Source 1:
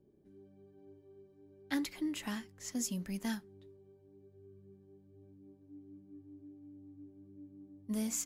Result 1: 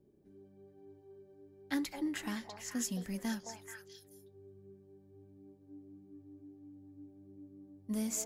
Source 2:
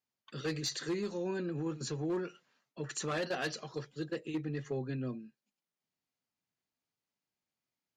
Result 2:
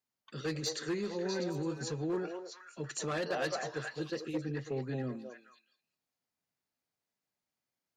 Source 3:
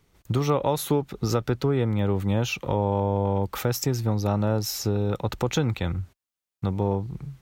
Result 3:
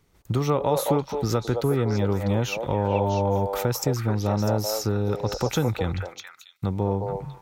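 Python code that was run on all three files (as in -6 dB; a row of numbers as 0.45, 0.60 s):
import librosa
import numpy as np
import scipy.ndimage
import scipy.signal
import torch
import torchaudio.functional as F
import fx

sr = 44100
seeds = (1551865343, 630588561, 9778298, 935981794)

p1 = fx.peak_eq(x, sr, hz=3000.0, db=-2.0, octaves=0.77)
y = p1 + fx.echo_stepped(p1, sr, ms=216, hz=640.0, octaves=1.4, feedback_pct=70, wet_db=0, dry=0)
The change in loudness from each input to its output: -0.5, +0.5, +0.5 LU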